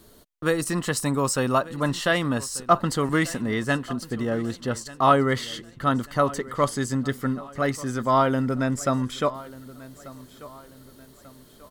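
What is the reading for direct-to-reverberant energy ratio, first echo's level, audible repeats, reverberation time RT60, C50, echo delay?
no reverb, -19.0 dB, 3, no reverb, no reverb, 1189 ms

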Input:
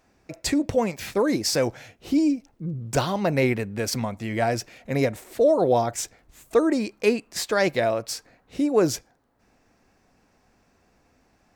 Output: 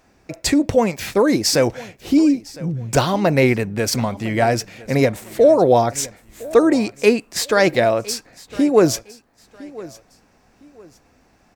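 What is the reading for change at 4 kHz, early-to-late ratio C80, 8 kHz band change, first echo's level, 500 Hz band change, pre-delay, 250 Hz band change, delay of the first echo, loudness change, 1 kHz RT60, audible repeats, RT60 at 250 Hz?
+6.5 dB, no reverb, +6.5 dB, -20.0 dB, +6.5 dB, no reverb, +6.5 dB, 1009 ms, +6.5 dB, no reverb, 2, no reverb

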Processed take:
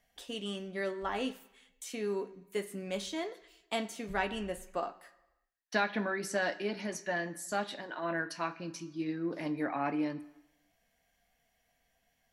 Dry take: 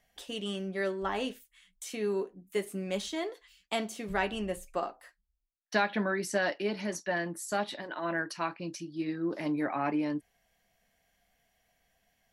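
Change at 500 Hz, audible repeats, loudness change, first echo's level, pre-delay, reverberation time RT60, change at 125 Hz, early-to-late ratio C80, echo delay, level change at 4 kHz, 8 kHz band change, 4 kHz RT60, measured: -3.0 dB, no echo, -2.5 dB, no echo, 3 ms, 1.0 s, -3.5 dB, 18.5 dB, no echo, -2.0 dB, -2.0 dB, 0.95 s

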